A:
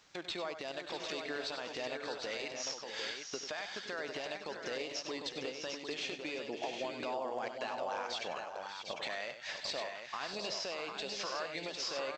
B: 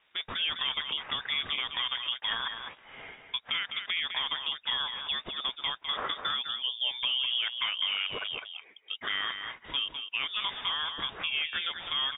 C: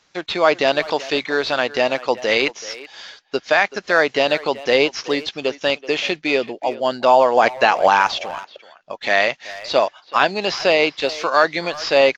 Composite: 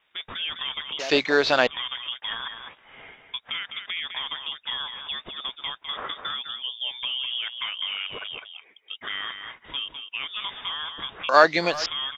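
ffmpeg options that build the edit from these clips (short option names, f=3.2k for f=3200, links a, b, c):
-filter_complex "[2:a]asplit=2[a][b];[1:a]asplit=3[c][d][e];[c]atrim=end=0.992[f];[a]atrim=start=0.988:end=1.672[g];[d]atrim=start=1.668:end=11.292[h];[b]atrim=start=11.288:end=11.862[i];[e]atrim=start=11.858[j];[f][g]acrossfade=d=0.004:c1=hsin:c2=hsin[k];[k][h]acrossfade=d=0.004:c1=hsin:c2=hsin[l];[l][i]acrossfade=d=0.004:c1=hsin:c2=hsin[m];[m][j]acrossfade=d=0.004:c1=hsin:c2=hsin"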